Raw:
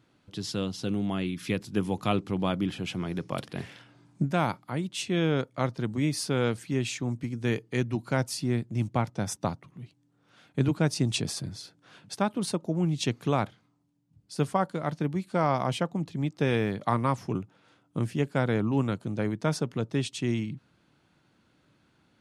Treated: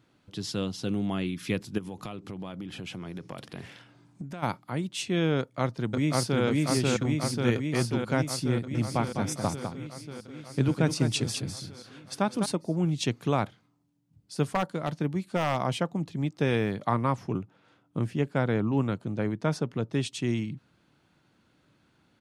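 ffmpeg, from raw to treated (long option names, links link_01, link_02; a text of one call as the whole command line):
ffmpeg -i in.wav -filter_complex "[0:a]asplit=3[link_01][link_02][link_03];[link_01]afade=type=out:start_time=1.77:duration=0.02[link_04];[link_02]acompressor=threshold=-34dB:ratio=8:attack=3.2:release=140:knee=1:detection=peak,afade=type=in:start_time=1.77:duration=0.02,afade=type=out:start_time=4.42:duration=0.02[link_05];[link_03]afade=type=in:start_time=4.42:duration=0.02[link_06];[link_04][link_05][link_06]amix=inputs=3:normalize=0,asplit=2[link_07][link_08];[link_08]afade=type=in:start_time=5.39:duration=0.01,afade=type=out:start_time=6.42:duration=0.01,aecho=0:1:540|1080|1620|2160|2700|3240|3780|4320|4860|5400|5940|6480:1|0.75|0.5625|0.421875|0.316406|0.237305|0.177979|0.133484|0.100113|0.0750847|0.0563135|0.0422351[link_09];[link_07][link_09]amix=inputs=2:normalize=0,asettb=1/sr,asplit=3[link_10][link_11][link_12];[link_10]atrim=end=8.544[link_13];[link_11]atrim=start=8.54:end=12.46,asetpts=PTS-STARTPTS,afade=type=in:duration=0.004:curve=qsin,afade=type=out:start_time=3.916:duration=0.004:curve=qsin,aecho=1:1:203:0.422,atrim=end_sample=172872[link_14];[link_12]atrim=start=12.456[link_15];[link_13][link_14]acrossfade=duration=0.004:curve1=hsin:curve2=qsin[link_16];[link_16][link_15]acrossfade=duration=0.004:curve1=qsin:curve2=hsin,asettb=1/sr,asplit=3[link_17][link_18][link_19];[link_17]atrim=end=14.474[link_20];[link_18]atrim=start=14.47:end=15.59,asetpts=PTS-STARTPTS,afade=type=in:duration=0.004:curve=qsin,afade=type=out:start_time=1.116:duration=0.004:curve=qsin,aeval=exprs='0.15*(abs(mod(val(0)/0.15+3,4)-2)-1)':channel_layout=same[link_21];[link_19]atrim=start=15.586[link_22];[link_20][link_21]acrossfade=duration=0.004:curve1=hsin:curve2=qsin[link_23];[link_23][link_22]acrossfade=duration=0.004:curve1=qsin:curve2=hsin,asettb=1/sr,asplit=3[link_24][link_25][link_26];[link_24]atrim=end=16.874[link_27];[link_25]atrim=start=16.87:end=19.93,asetpts=PTS-STARTPTS,afade=type=in:duration=0.004:curve=qsin,afade=type=out:start_time=3.056:duration=0.004:curve=qsin,highshelf=frequency=5000:gain=-8[link_28];[link_26]atrim=start=19.926[link_29];[link_27][link_28]acrossfade=duration=0.004:curve1=hsin:curve2=qsin[link_30];[link_30][link_29]acrossfade=duration=0.004:curve1=qsin:curve2=hsin" out.wav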